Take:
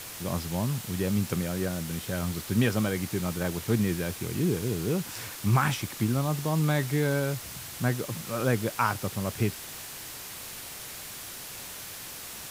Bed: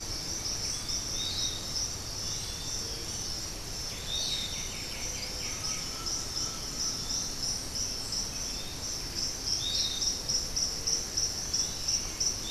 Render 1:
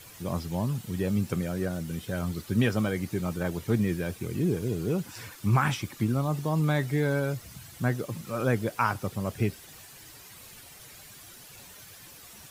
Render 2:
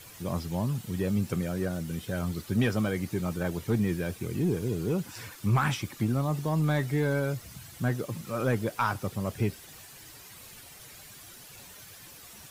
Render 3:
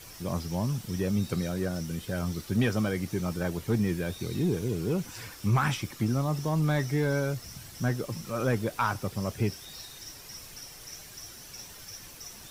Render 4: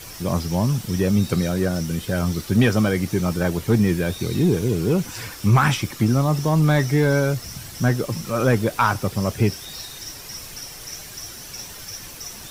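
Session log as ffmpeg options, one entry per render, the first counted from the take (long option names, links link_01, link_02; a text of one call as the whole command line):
ffmpeg -i in.wav -af "afftdn=noise_reduction=11:noise_floor=-41" out.wav
ffmpeg -i in.wav -af "asoftclip=type=tanh:threshold=-15.5dB" out.wav
ffmpeg -i in.wav -i bed.wav -filter_complex "[1:a]volume=-16dB[link_01];[0:a][link_01]amix=inputs=2:normalize=0" out.wav
ffmpeg -i in.wav -af "volume=9dB" out.wav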